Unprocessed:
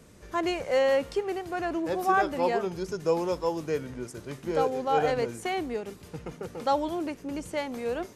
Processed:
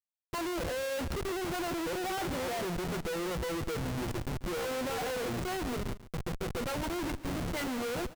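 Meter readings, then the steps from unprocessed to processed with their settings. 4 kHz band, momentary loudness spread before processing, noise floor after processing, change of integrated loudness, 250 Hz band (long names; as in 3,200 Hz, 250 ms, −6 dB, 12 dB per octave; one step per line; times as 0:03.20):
+0.5 dB, 13 LU, −53 dBFS, −6.0 dB, −3.0 dB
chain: EQ curve with evenly spaced ripples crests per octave 2, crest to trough 14 dB
noise that follows the level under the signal 24 dB
comparator with hysteresis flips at −35 dBFS
on a send: single-tap delay 141 ms −16 dB
on the sum: level −8 dB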